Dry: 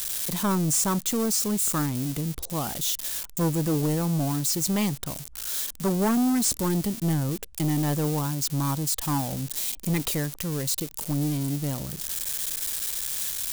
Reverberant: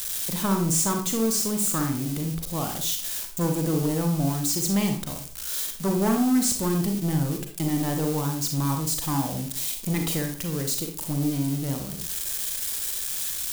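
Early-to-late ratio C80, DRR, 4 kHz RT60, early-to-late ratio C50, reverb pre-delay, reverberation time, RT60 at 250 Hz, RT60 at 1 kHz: 11.5 dB, 3.5 dB, 0.35 s, 6.0 dB, 34 ms, 0.40 s, 0.50 s, 0.40 s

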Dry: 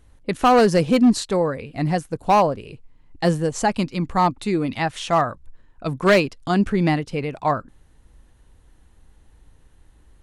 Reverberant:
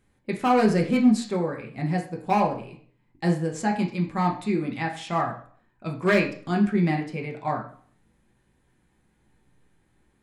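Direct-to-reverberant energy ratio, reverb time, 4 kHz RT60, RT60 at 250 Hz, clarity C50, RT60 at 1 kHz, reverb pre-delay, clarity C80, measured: 0.0 dB, 0.50 s, 0.45 s, 0.55 s, 9.0 dB, 0.50 s, 3 ms, 13.0 dB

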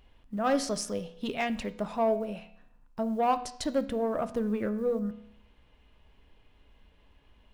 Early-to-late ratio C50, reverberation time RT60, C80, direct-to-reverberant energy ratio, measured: 14.5 dB, 0.70 s, 17.0 dB, 10.0 dB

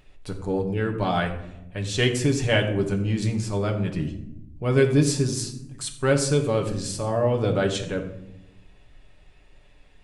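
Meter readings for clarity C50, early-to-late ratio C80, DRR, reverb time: 9.5 dB, 11.5 dB, 2.0 dB, 0.85 s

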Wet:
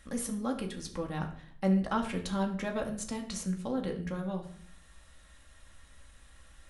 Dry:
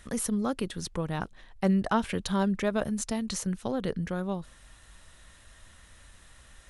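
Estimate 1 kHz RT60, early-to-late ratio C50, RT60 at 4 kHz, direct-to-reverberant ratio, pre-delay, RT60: 0.55 s, 10.0 dB, 0.40 s, 1.5 dB, 4 ms, 0.60 s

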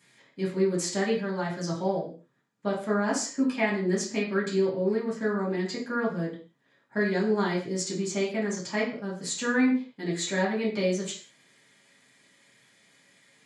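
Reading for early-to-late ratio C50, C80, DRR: 6.5 dB, 11.0 dB, −8.0 dB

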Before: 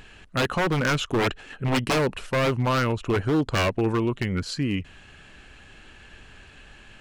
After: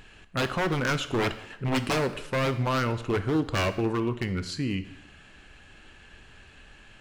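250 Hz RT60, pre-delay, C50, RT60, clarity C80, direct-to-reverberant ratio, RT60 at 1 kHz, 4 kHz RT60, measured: 0.85 s, 7 ms, 13.5 dB, 0.85 s, 15.5 dB, 10.5 dB, 0.85 s, 0.80 s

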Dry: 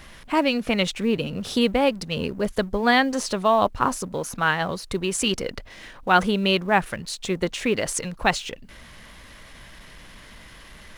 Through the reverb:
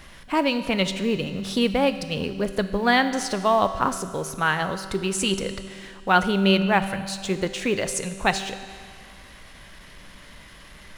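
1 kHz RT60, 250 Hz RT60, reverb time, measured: 2.1 s, 2.1 s, 2.1 s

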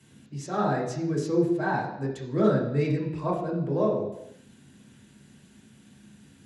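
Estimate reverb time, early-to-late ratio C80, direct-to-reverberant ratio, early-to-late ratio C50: 0.80 s, 8.0 dB, −4.5 dB, 5.5 dB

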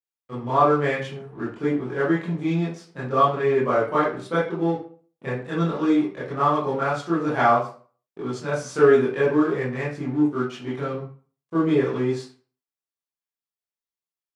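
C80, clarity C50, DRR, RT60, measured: 9.5 dB, 3.5 dB, −10.0 dB, 0.40 s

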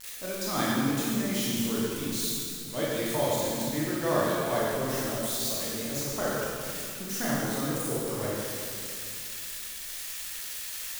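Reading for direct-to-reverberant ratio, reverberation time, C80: −6.5 dB, 2.4 s, −1.0 dB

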